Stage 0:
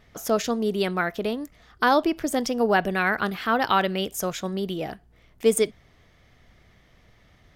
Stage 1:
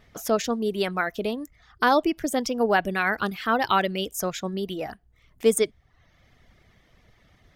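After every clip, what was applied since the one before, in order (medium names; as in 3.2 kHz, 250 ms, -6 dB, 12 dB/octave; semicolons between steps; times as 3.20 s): reverb removal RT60 0.64 s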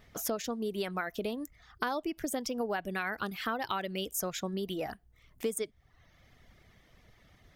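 treble shelf 9.7 kHz +6.5 dB; compression 6:1, threshold -28 dBFS, peak gain reduction 13.5 dB; trim -2.5 dB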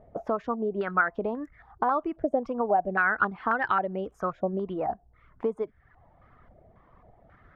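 step-sequenced low-pass 3.7 Hz 650–1600 Hz; trim +3 dB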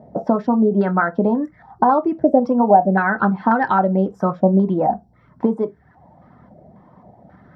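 reverberation RT60 0.15 s, pre-delay 3 ms, DRR 7 dB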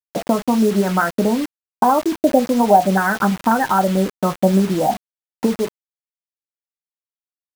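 bit crusher 5-bit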